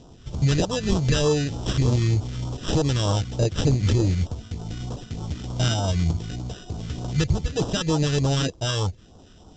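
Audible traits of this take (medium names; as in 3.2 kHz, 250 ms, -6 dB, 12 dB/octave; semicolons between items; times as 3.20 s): aliases and images of a low sample rate 2.2 kHz, jitter 0%; phasing stages 2, 3.3 Hz, lowest notch 780–1900 Hz; µ-law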